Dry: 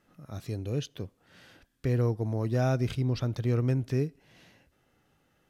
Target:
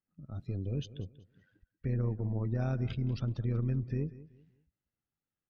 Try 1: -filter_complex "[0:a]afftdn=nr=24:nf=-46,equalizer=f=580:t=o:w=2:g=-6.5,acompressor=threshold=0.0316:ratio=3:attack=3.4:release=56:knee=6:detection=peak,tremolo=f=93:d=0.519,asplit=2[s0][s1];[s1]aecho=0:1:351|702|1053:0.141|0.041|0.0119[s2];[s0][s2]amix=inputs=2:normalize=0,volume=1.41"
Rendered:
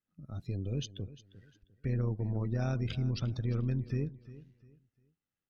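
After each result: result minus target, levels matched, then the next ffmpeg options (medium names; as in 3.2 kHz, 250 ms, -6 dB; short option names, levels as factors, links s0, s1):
echo 162 ms late; 2 kHz band +2.5 dB
-filter_complex "[0:a]afftdn=nr=24:nf=-46,equalizer=f=580:t=o:w=2:g=-6.5,acompressor=threshold=0.0316:ratio=3:attack=3.4:release=56:knee=6:detection=peak,tremolo=f=93:d=0.519,asplit=2[s0][s1];[s1]aecho=0:1:189|378|567:0.141|0.041|0.0119[s2];[s0][s2]amix=inputs=2:normalize=0,volume=1.41"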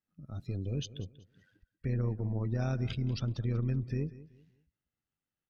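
2 kHz band +2.5 dB
-filter_complex "[0:a]afftdn=nr=24:nf=-46,lowpass=f=2000:p=1,equalizer=f=580:t=o:w=2:g=-6.5,acompressor=threshold=0.0316:ratio=3:attack=3.4:release=56:knee=6:detection=peak,tremolo=f=93:d=0.519,asplit=2[s0][s1];[s1]aecho=0:1:189|378|567:0.141|0.041|0.0119[s2];[s0][s2]amix=inputs=2:normalize=0,volume=1.41"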